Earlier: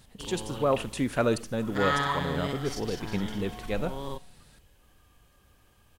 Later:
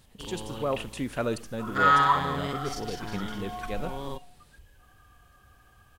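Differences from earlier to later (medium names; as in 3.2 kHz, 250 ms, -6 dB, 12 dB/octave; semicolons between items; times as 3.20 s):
speech -4.0 dB; second sound +9.5 dB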